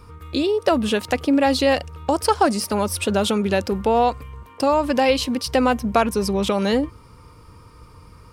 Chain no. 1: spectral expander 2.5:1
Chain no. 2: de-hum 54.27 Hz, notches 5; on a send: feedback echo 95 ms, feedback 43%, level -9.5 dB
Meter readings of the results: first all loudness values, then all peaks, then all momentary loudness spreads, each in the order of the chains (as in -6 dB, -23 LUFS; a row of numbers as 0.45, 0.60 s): -22.0, -20.0 LUFS; -4.0, -4.5 dBFS; 14, 6 LU